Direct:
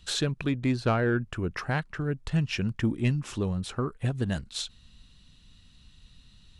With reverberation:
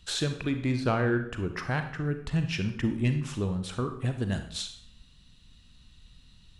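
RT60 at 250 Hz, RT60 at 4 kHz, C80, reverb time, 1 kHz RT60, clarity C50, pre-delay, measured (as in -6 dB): 0.65 s, 0.55 s, 12.0 dB, 0.65 s, 0.60 s, 8.5 dB, 33 ms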